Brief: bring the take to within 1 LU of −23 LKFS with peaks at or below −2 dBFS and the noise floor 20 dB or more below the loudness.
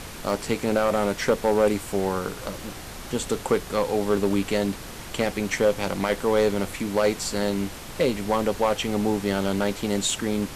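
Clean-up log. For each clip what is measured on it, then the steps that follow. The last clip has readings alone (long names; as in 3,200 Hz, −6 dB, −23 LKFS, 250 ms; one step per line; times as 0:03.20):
share of clipped samples 0.6%; peaks flattened at −13.0 dBFS; background noise floor −39 dBFS; target noise floor −45 dBFS; integrated loudness −25.0 LKFS; sample peak −13.0 dBFS; target loudness −23.0 LKFS
→ clipped peaks rebuilt −13 dBFS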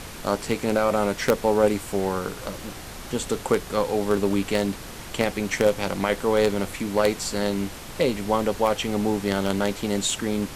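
share of clipped samples 0.0%; background noise floor −39 dBFS; target noise floor −45 dBFS
→ noise reduction from a noise print 6 dB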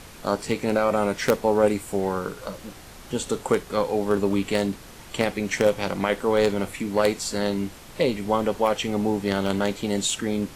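background noise floor −44 dBFS; target noise floor −45 dBFS
→ noise reduction from a noise print 6 dB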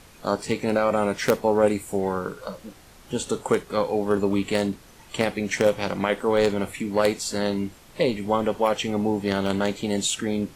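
background noise floor −50 dBFS; integrated loudness −24.5 LKFS; sample peak −4.0 dBFS; target loudness −23.0 LKFS
→ level +1.5 dB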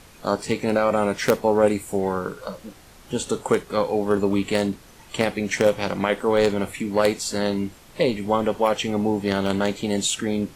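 integrated loudness −23.0 LKFS; sample peak −2.5 dBFS; background noise floor −48 dBFS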